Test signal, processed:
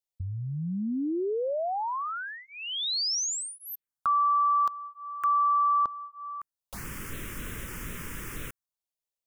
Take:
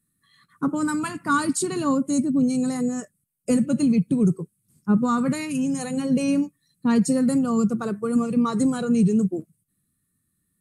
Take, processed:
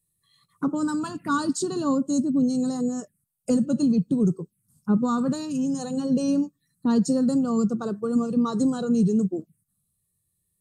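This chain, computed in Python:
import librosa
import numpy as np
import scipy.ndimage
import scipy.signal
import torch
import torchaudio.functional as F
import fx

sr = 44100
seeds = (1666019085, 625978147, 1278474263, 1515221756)

y = fx.dynamic_eq(x, sr, hz=110.0, q=1.0, threshold_db=-37.0, ratio=4.0, max_db=-5)
y = fx.env_phaser(y, sr, low_hz=250.0, high_hz=2200.0, full_db=-26.0)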